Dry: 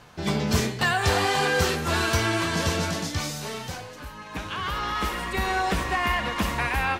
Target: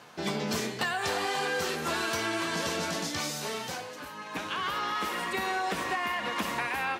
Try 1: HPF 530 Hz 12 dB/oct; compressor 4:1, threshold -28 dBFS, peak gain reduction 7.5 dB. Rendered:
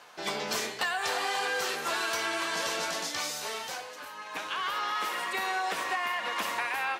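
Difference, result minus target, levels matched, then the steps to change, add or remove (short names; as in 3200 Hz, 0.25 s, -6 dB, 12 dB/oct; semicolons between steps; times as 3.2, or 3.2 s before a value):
250 Hz band -9.0 dB
change: HPF 220 Hz 12 dB/oct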